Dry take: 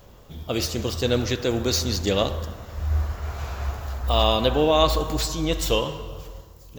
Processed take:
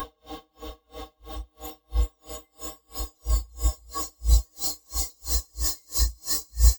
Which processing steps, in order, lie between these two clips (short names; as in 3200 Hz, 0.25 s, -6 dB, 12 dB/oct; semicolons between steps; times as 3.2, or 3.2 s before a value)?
recorder AGC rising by 18 dB/s; Paulstretch 21×, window 1.00 s, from 4.76; band shelf 6300 Hz -8 dB 2.5 oct; small resonant body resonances 2100/3100 Hz, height 15 dB, ringing for 40 ms; in parallel at +0.5 dB: limiter -14.5 dBFS, peak gain reduction 7.5 dB; on the sum: spectral noise reduction 22 dB; harmoniser +7 st -14 dB; tone controls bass +2 dB, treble +13 dB; comb 3.8 ms, depth 97%; dB-linear tremolo 3 Hz, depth 37 dB; gain -3 dB